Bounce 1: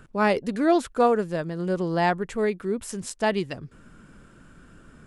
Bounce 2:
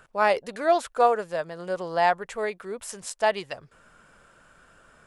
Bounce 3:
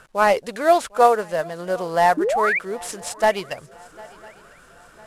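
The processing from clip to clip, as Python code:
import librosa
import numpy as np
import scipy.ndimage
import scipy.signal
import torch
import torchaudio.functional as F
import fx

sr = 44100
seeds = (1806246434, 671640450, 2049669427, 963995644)

y1 = fx.low_shelf_res(x, sr, hz=420.0, db=-11.5, q=1.5)
y2 = fx.cvsd(y1, sr, bps=64000)
y2 = fx.spec_paint(y2, sr, seeds[0], shape='rise', start_s=2.17, length_s=0.42, low_hz=280.0, high_hz=2500.0, level_db=-26.0)
y2 = fx.echo_swing(y2, sr, ms=1001, ratio=3, feedback_pct=41, wet_db=-23.5)
y2 = y2 * librosa.db_to_amplitude(5.5)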